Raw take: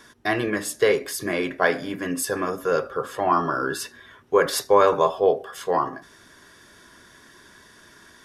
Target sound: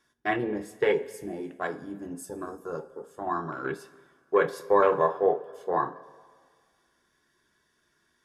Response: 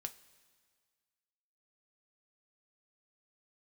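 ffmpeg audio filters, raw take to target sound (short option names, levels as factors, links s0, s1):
-filter_complex "[0:a]afwtdn=0.0562,asettb=1/sr,asplit=3[s0][s1][s2];[s0]atrim=end=1.104[s3];[s1]atrim=start=1.1:end=3.65,asetpts=PTS-STARTPTS,afade=t=in:d=0.004:c=qsin,afade=t=out:st=2.546:d=0.004:c=qsin,equalizer=f=125:t=o:w=1:g=-5,equalizer=f=500:t=o:w=1:g=-8,equalizer=f=1000:t=o:w=1:g=-3,equalizer=f=2000:t=o:w=1:g=-8,equalizer=f=4000:t=o:w=1:g=-4,equalizer=f=8000:t=o:w=1:g=7[s4];[s2]atrim=start=3.646[s5];[s3][s4]acrossfade=d=0.004:c1=hsin:c2=qsin[s6];[s6][s5]acrossfade=d=0.004:c1=qsin:c2=hsin[s7];[1:a]atrim=start_sample=2205[s8];[s7][s8]afir=irnorm=-1:irlink=0,volume=0.891"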